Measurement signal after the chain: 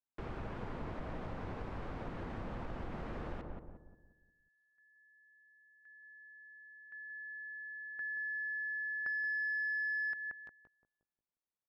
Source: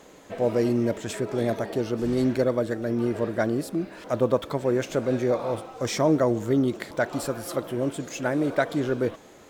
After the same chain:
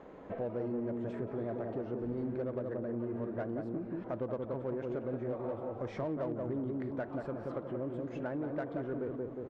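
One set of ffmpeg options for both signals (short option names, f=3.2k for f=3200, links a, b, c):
-filter_complex "[0:a]lowpass=1.4k,asplit=2[a][b];[b]adelay=179,lowpass=f=890:p=1,volume=-3dB,asplit=2[c][d];[d]adelay=179,lowpass=f=890:p=1,volume=0.44,asplit=2[e][f];[f]adelay=179,lowpass=f=890:p=1,volume=0.44,asplit=2[g][h];[h]adelay=179,lowpass=f=890:p=1,volume=0.44,asplit=2[i][j];[j]adelay=179,lowpass=f=890:p=1,volume=0.44,asplit=2[k][l];[l]adelay=179,lowpass=f=890:p=1,volume=0.44[m];[a][c][e][g][i][k][m]amix=inputs=7:normalize=0,asplit=2[n][o];[o]asoftclip=type=tanh:threshold=-23.5dB,volume=-4dB[p];[n][p]amix=inputs=2:normalize=0,acompressor=threshold=-33dB:ratio=3,volume=-5dB"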